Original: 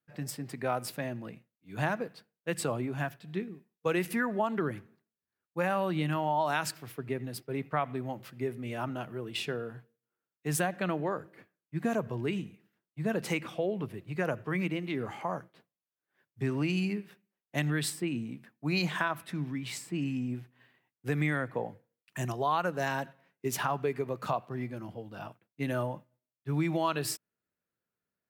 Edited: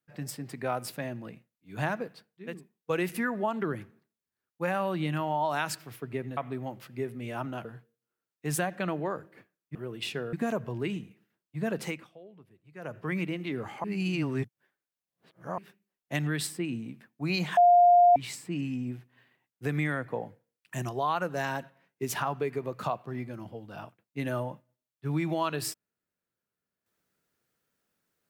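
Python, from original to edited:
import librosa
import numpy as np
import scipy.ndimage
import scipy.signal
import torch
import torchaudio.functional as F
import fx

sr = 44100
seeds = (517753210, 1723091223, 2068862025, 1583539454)

y = fx.edit(x, sr, fx.cut(start_s=2.49, length_s=0.96, crossfade_s=0.24),
    fx.cut(start_s=7.33, length_s=0.47),
    fx.move(start_s=9.08, length_s=0.58, to_s=11.76),
    fx.fade_down_up(start_s=13.22, length_s=1.27, db=-19.0, fade_s=0.31),
    fx.reverse_span(start_s=15.27, length_s=1.74),
    fx.bleep(start_s=19.0, length_s=0.59, hz=705.0, db=-15.0), tone=tone)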